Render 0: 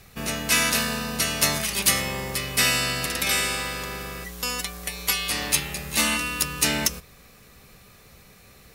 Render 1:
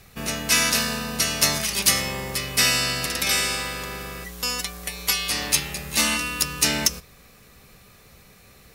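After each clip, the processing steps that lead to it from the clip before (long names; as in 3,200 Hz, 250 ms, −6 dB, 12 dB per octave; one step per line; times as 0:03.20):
dynamic equaliser 5,400 Hz, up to +5 dB, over −36 dBFS, Q 2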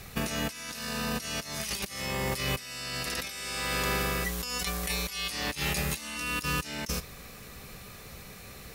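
compressor whose output falls as the input rises −33 dBFS, ratio −1
level −1.5 dB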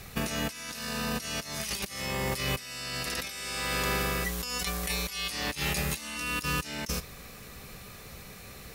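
no processing that can be heard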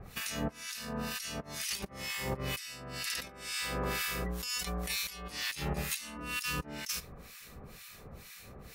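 two-band tremolo in antiphase 2.1 Hz, depth 100%, crossover 1,300 Hz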